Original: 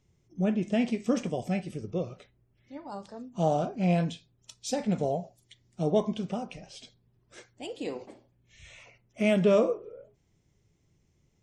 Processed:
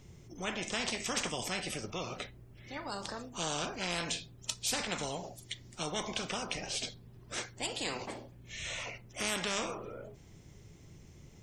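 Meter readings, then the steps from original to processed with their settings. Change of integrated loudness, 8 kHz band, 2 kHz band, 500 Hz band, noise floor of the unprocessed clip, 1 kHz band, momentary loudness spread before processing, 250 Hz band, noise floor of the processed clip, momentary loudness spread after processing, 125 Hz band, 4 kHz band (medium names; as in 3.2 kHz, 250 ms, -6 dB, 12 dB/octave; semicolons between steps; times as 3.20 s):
-7.5 dB, +9.5 dB, +4.0 dB, -12.0 dB, -70 dBFS, -3.5 dB, 20 LU, -13.5 dB, -56 dBFS, 20 LU, -12.0 dB, +8.5 dB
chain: spectrum-flattening compressor 4:1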